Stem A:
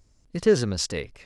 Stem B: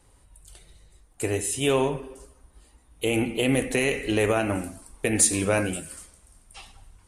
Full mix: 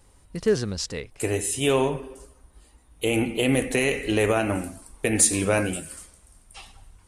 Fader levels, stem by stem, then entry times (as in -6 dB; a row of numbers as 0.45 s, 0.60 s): -2.5 dB, +1.0 dB; 0.00 s, 0.00 s